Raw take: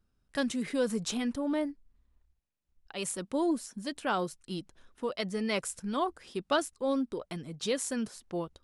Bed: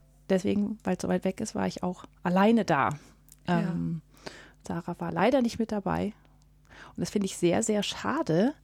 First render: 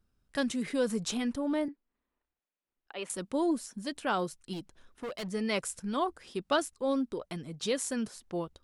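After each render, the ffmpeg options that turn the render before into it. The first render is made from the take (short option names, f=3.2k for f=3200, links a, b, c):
-filter_complex "[0:a]asettb=1/sr,asplit=3[a][b][c];[a]atrim=end=1.684[d];[b]atrim=start=1.68:end=3.1,asetpts=PTS-STARTPTS,afade=t=in:d=0.004:c=qsin,afade=t=out:st=1.416:d=0.004:c=qsin,acrossover=split=240 3600:gain=0.0631 1 0.0794[e][f][g];[e][f][g]amix=inputs=3:normalize=0[h];[c]atrim=start=3.096[i];[d][h]acrossfade=d=0.004:c1=hsin:c2=qsin[j];[j][i]acrossfade=d=0.004:c1=qsin:c2=hsin,asettb=1/sr,asplit=3[k][l][m];[k]atrim=end=4.534[n];[l]atrim=start=4.53:end=5.28,asetpts=PTS-STARTPTS,afade=t=in:d=0.004:c=qsin,afade=t=out:st=0.746:d=0.004:c=qsin,asoftclip=type=hard:threshold=-34.5dB[o];[m]atrim=start=5.276[p];[n][o]acrossfade=d=0.004:c1=hsin:c2=qsin[q];[q][p]acrossfade=d=0.004:c1=qsin:c2=hsin"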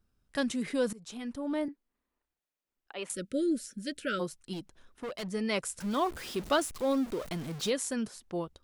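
-filter_complex "[0:a]asplit=3[a][b][c];[a]afade=t=out:st=3.13:d=0.02[d];[b]asuperstop=centerf=890:order=20:qfactor=1.3,afade=t=in:st=3.13:d=0.02,afade=t=out:st=4.19:d=0.02[e];[c]afade=t=in:st=4.19:d=0.02[f];[d][e][f]amix=inputs=3:normalize=0,asettb=1/sr,asplit=3[g][h][i];[g]atrim=end=5.804[j];[h]atrim=start=5.8:end=7.7,asetpts=PTS-STARTPTS,afade=t=in:d=0.004:c=qsin,afade=t=out:st=1.896:d=0.004:c=qsin,aeval=exprs='val(0)+0.5*0.0119*sgn(val(0))':c=same[k];[i]atrim=start=7.696[l];[j][k]acrossfade=d=0.004:c1=hsin:c2=qsin[m];[m][l]acrossfade=d=0.004:c1=qsin:c2=hsin,asplit=2[n][o];[n]atrim=end=0.93,asetpts=PTS-STARTPTS,afade=t=out:st=0.926:d=0.004:c=hsin:silence=0.0749894[p];[o]atrim=start=0.93,asetpts=PTS-STARTPTS,afade=t=in:d=0.77:silence=0.0749894[q];[p][q]concat=n=2:v=0:a=1"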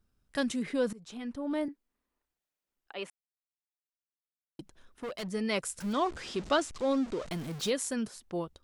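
-filter_complex "[0:a]asettb=1/sr,asplit=3[a][b][c];[a]atrim=end=0.594[d];[b]atrim=start=0.59:end=1.51,asetpts=PTS-STARTPTS,afade=t=in:d=0.004:c=qsin,afade=t=out:st=0.916:d=0.004:c=qsin,highshelf=f=5.8k:g=-9[e];[c]atrim=start=1.506[f];[d][e]acrossfade=d=0.004:c1=hsin:c2=qsin[g];[g][f]acrossfade=d=0.004:c1=qsin:c2=hsin,asettb=1/sr,asplit=3[h][i][j];[h]atrim=end=5.934[k];[i]atrim=start=5.93:end=7.31,asetpts=PTS-STARTPTS,afade=t=in:d=0.004:c=qsin,afade=t=out:st=1.376:d=0.004:c=qsin,lowpass=f=8k:w=0.5412,lowpass=f=8k:w=1.3066[l];[j]atrim=start=7.306[m];[k][l]acrossfade=d=0.004:c1=hsin:c2=qsin[n];[n][m]acrossfade=d=0.004:c1=qsin:c2=hsin,asplit=3[o][p][q];[o]atrim=end=3.1,asetpts=PTS-STARTPTS,afade=t=out:st=3.096:d=0.004:c=hsin[r];[p]atrim=start=3.1:end=4.59,asetpts=PTS-STARTPTS,volume=0[s];[q]atrim=start=4.59,asetpts=PTS-STARTPTS,afade=t=in:d=0.004:c=hsin[t];[r][s][t]concat=n=3:v=0:a=1"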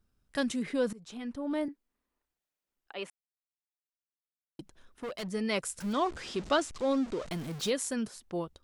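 -af anull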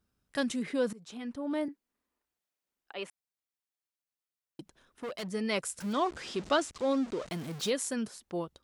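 -af "highpass=f=100:p=1"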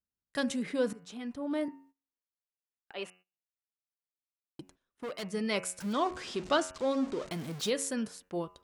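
-af "bandreject=f=91.48:t=h:w=4,bandreject=f=182.96:t=h:w=4,bandreject=f=274.44:t=h:w=4,bandreject=f=365.92:t=h:w=4,bandreject=f=457.4:t=h:w=4,bandreject=f=548.88:t=h:w=4,bandreject=f=640.36:t=h:w=4,bandreject=f=731.84:t=h:w=4,bandreject=f=823.32:t=h:w=4,bandreject=f=914.8:t=h:w=4,bandreject=f=1.00628k:t=h:w=4,bandreject=f=1.09776k:t=h:w=4,bandreject=f=1.18924k:t=h:w=4,bandreject=f=1.28072k:t=h:w=4,bandreject=f=1.3722k:t=h:w=4,bandreject=f=1.46368k:t=h:w=4,bandreject=f=1.55516k:t=h:w=4,bandreject=f=1.64664k:t=h:w=4,bandreject=f=1.73812k:t=h:w=4,bandreject=f=1.8296k:t=h:w=4,bandreject=f=1.92108k:t=h:w=4,bandreject=f=2.01256k:t=h:w=4,bandreject=f=2.10404k:t=h:w=4,bandreject=f=2.19552k:t=h:w=4,bandreject=f=2.287k:t=h:w=4,bandreject=f=2.37848k:t=h:w=4,bandreject=f=2.46996k:t=h:w=4,bandreject=f=2.56144k:t=h:w=4,bandreject=f=2.65292k:t=h:w=4,bandreject=f=2.7444k:t=h:w=4,bandreject=f=2.83588k:t=h:w=4,bandreject=f=2.92736k:t=h:w=4,agate=range=-20dB:threshold=-58dB:ratio=16:detection=peak"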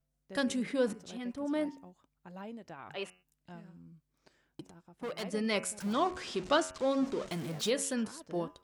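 -filter_complex "[1:a]volume=-23dB[a];[0:a][a]amix=inputs=2:normalize=0"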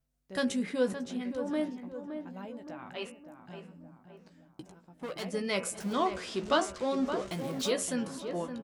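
-filter_complex "[0:a]asplit=2[a][b];[b]adelay=16,volume=-8dB[c];[a][c]amix=inputs=2:normalize=0,asplit=2[d][e];[e]adelay=568,lowpass=f=1.6k:p=1,volume=-8dB,asplit=2[f][g];[g]adelay=568,lowpass=f=1.6k:p=1,volume=0.5,asplit=2[h][i];[i]adelay=568,lowpass=f=1.6k:p=1,volume=0.5,asplit=2[j][k];[k]adelay=568,lowpass=f=1.6k:p=1,volume=0.5,asplit=2[l][m];[m]adelay=568,lowpass=f=1.6k:p=1,volume=0.5,asplit=2[n][o];[o]adelay=568,lowpass=f=1.6k:p=1,volume=0.5[p];[d][f][h][j][l][n][p]amix=inputs=7:normalize=0"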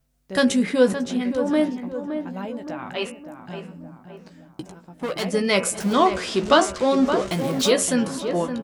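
-af "volume=11.5dB,alimiter=limit=-3dB:level=0:latency=1"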